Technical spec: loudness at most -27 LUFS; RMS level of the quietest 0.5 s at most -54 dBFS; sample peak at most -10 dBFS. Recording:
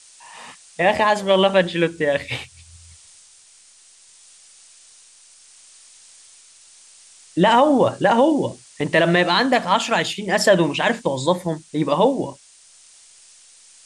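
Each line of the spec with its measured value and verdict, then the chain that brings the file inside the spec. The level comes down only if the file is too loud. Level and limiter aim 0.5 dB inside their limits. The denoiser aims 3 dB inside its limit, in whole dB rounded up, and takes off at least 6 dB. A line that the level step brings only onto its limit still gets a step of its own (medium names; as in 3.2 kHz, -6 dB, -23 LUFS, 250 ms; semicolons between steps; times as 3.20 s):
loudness -18.5 LUFS: fail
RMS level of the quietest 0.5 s -50 dBFS: fail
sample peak -5.0 dBFS: fail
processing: trim -9 dB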